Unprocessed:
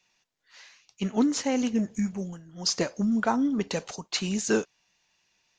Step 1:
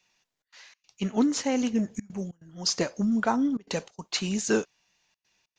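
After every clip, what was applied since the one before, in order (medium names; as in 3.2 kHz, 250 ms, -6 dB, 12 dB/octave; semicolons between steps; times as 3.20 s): trance gate "xxxx.xx.xxxxxxx" 143 bpm -24 dB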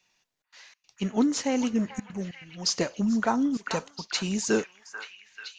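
repeats whose band climbs or falls 439 ms, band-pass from 1.3 kHz, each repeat 0.7 oct, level -4.5 dB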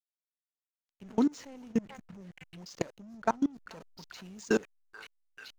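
level held to a coarse grid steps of 23 dB; hysteresis with a dead band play -45.5 dBFS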